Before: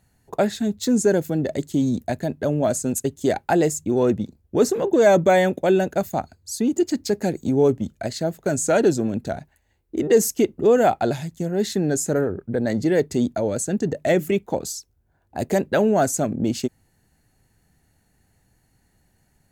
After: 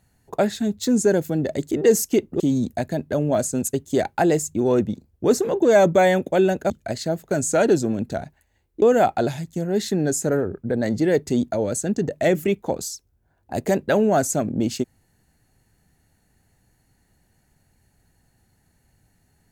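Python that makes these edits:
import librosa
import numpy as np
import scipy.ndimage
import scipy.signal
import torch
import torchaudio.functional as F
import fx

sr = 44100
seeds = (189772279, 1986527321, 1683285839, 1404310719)

y = fx.edit(x, sr, fx.cut(start_s=6.01, length_s=1.84),
    fx.move(start_s=9.97, length_s=0.69, to_s=1.71), tone=tone)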